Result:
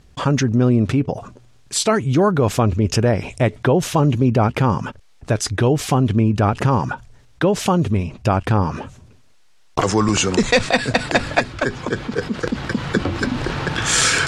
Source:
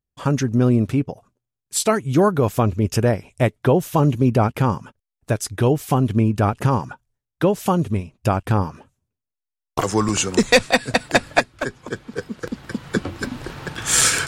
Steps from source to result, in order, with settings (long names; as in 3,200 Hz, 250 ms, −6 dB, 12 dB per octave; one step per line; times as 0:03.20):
low-pass filter 6,300 Hz 12 dB per octave
envelope flattener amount 50%
level −2 dB